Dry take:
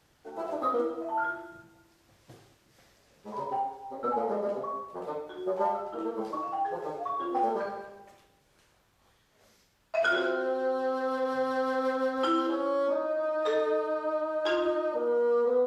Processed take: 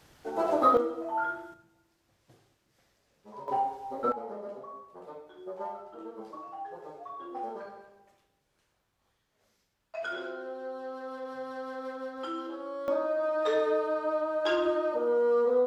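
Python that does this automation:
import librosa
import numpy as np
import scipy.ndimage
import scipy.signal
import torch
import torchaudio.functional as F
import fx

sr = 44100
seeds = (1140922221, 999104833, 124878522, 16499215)

y = fx.gain(x, sr, db=fx.steps((0.0, 7.0), (0.77, -0.5), (1.54, -8.5), (3.48, 2.5), (4.12, -9.5), (12.88, 0.5)))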